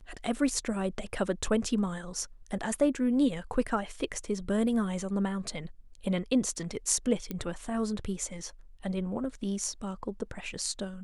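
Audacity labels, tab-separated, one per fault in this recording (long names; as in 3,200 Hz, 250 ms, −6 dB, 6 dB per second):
7.310000	7.310000	click −20 dBFS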